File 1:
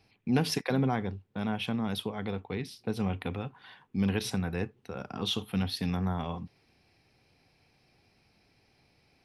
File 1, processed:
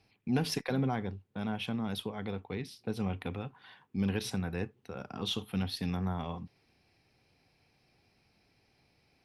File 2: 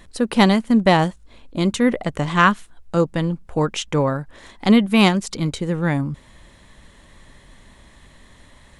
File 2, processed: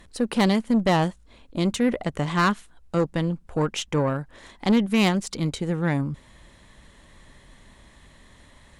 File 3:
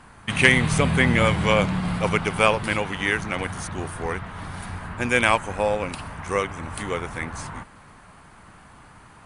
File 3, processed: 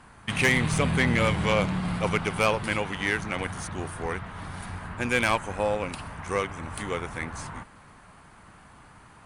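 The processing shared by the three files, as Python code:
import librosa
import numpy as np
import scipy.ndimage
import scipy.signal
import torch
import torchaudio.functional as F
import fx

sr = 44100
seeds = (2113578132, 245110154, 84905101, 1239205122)

y = fx.tube_stage(x, sr, drive_db=12.0, bias=0.35)
y = y * 10.0 ** (-2.0 / 20.0)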